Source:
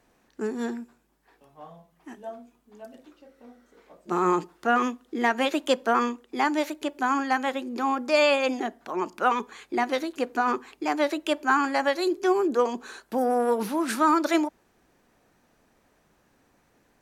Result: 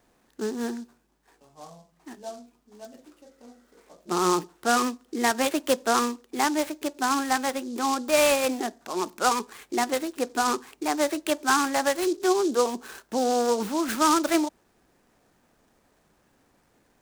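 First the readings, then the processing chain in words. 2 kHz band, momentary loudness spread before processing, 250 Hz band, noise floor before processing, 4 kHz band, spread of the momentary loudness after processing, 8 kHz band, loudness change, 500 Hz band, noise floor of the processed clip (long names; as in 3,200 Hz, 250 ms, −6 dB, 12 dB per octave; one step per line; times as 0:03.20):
−1.0 dB, 10 LU, 0.0 dB, −66 dBFS, +3.0 dB, 10 LU, +12.0 dB, 0.0 dB, 0.0 dB, −66 dBFS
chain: short delay modulated by noise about 5,400 Hz, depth 0.051 ms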